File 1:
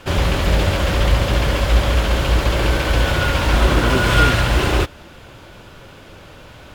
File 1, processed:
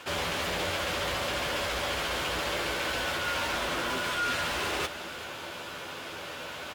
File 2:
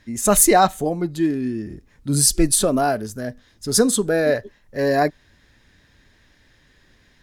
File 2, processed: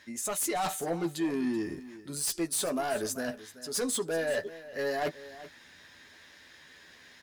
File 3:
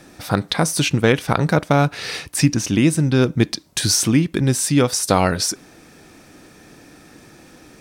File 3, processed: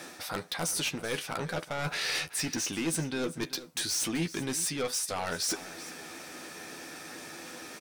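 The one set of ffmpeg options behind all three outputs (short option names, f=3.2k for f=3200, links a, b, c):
-filter_complex "[0:a]highpass=f=670:p=1,areverse,acompressor=threshold=-32dB:ratio=6,areverse,aeval=exprs='0.106*(cos(1*acos(clip(val(0)/0.106,-1,1)))-cos(1*PI/2))+0.0473*(cos(5*acos(clip(val(0)/0.106,-1,1)))-cos(5*PI/2))':c=same,asplit=2[a][b];[b]adelay=12,volume=-7dB[c];[a][c]amix=inputs=2:normalize=0,aecho=1:1:382:0.158,volume=-5.5dB"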